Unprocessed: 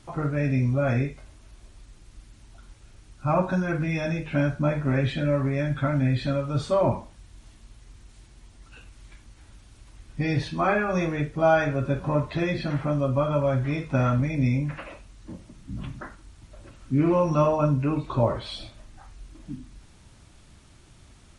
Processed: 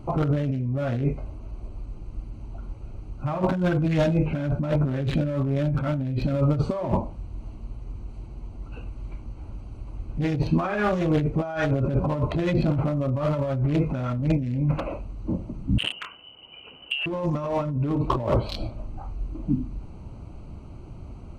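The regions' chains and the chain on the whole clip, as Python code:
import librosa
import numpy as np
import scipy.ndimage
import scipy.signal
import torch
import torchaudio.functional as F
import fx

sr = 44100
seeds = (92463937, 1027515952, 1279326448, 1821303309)

y = fx.chain(x, sr, fx.freq_invert(carrier_hz=3000),
    fx.highpass(hz=44.0, slope=12), at=(15.78, 17.06))
y = fx.wiener(y, sr, points=25)
y = fx.over_compress(y, sr, threshold_db=-31.0, ratio=-1.0)
y = y * librosa.db_to_amplitude(7.0)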